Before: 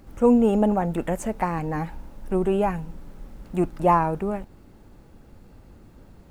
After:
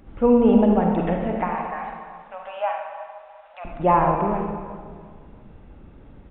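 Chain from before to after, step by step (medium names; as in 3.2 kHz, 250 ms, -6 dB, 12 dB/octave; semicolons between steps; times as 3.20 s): 1.31–3.65 s: elliptic high-pass 590 Hz, stop band 40 dB; feedback delay 348 ms, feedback 31%, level -18 dB; reverberation RT60 1.7 s, pre-delay 37 ms, DRR 1.5 dB; resampled via 8 kHz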